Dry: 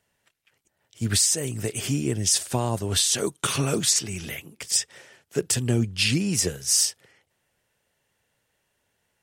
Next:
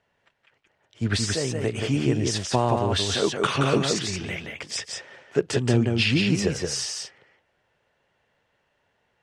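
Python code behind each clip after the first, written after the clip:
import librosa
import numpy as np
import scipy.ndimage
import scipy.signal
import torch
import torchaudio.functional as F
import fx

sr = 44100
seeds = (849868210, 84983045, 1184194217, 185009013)

y = scipy.signal.sosfilt(scipy.signal.butter(2, 4000.0, 'lowpass', fs=sr, output='sos'), x)
y = fx.peak_eq(y, sr, hz=840.0, db=5.5, octaves=2.6)
y = y + 10.0 ** (-4.0 / 20.0) * np.pad(y, (int(174 * sr / 1000.0), 0))[:len(y)]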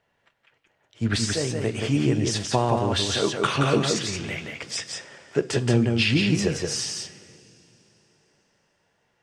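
y = fx.rev_double_slope(x, sr, seeds[0], early_s=0.33, late_s=3.7, knee_db=-18, drr_db=10.5)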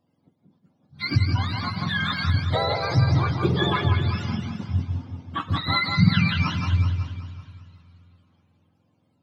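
y = fx.octave_mirror(x, sr, pivot_hz=690.0)
y = fx.echo_feedback(y, sr, ms=378, feedback_pct=25, wet_db=-11.5)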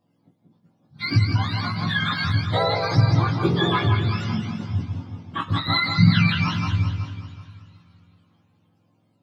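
y = fx.doubler(x, sr, ms=18.0, db=-2.0)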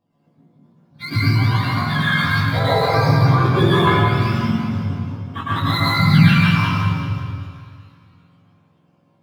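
y = scipy.ndimage.median_filter(x, 5, mode='constant')
y = fx.rev_plate(y, sr, seeds[1], rt60_s=1.2, hf_ratio=0.5, predelay_ms=95, drr_db=-8.0)
y = y * librosa.db_to_amplitude(-2.5)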